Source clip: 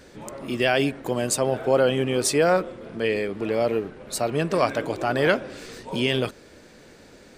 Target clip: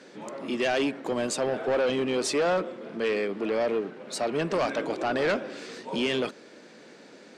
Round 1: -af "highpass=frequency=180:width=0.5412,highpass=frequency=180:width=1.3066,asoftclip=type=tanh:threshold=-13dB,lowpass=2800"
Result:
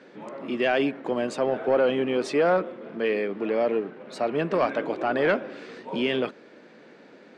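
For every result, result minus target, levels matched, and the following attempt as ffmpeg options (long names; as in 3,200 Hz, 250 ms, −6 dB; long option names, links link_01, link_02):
8,000 Hz band −14.0 dB; soft clipping: distortion −9 dB
-af "highpass=frequency=180:width=0.5412,highpass=frequency=180:width=1.3066,asoftclip=type=tanh:threshold=-13dB,lowpass=6600"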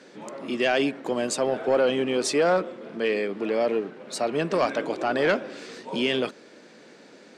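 soft clipping: distortion −9 dB
-af "highpass=frequency=180:width=0.5412,highpass=frequency=180:width=1.3066,asoftclip=type=tanh:threshold=-20.5dB,lowpass=6600"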